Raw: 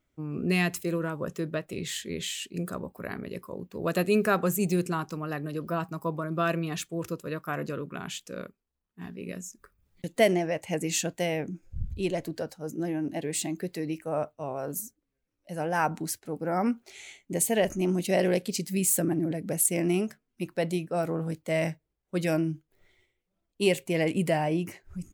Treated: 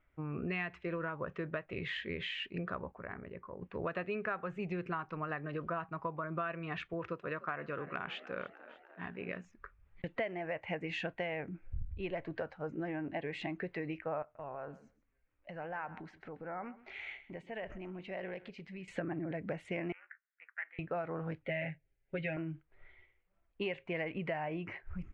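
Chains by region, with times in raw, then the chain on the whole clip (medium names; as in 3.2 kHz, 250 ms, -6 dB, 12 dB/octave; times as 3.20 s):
2.91–3.62 s: compression 1.5:1, threshold -50 dBFS + tape spacing loss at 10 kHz 30 dB
6.93–9.45 s: high-pass 140 Hz 6 dB/octave + frequency-shifting echo 298 ms, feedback 59%, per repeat +54 Hz, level -19.5 dB
14.22–18.88 s: compression 4:1, threshold -42 dBFS + feedback delay 131 ms, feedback 15%, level -17 dB
19.92–20.79 s: ring modulator 140 Hz + Butterworth band-pass 1.7 kHz, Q 2.7
21.42–22.37 s: static phaser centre 2.6 kHz, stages 4 + comb 7.4 ms, depth 88%
whole clip: low-pass 2.3 kHz 24 dB/octave; peaking EQ 240 Hz -13.5 dB 2.7 oct; compression 6:1, threshold -43 dBFS; trim +8 dB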